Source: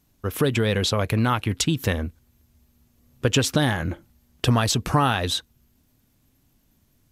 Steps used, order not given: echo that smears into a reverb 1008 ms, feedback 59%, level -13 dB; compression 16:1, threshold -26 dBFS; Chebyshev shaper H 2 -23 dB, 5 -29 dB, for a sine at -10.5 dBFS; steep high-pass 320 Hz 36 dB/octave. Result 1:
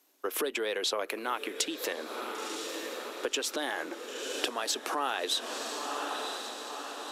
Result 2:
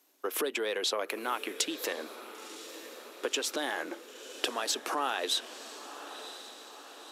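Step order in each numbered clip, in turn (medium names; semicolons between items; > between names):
echo that smears into a reverb > compression > steep high-pass > Chebyshev shaper; compression > echo that smears into a reverb > Chebyshev shaper > steep high-pass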